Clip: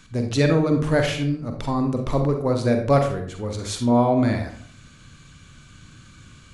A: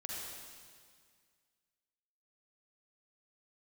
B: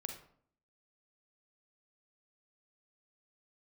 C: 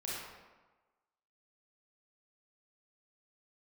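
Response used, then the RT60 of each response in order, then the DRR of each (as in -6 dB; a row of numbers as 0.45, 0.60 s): B; 1.9, 0.60, 1.2 s; -4.0, 4.0, -7.0 dB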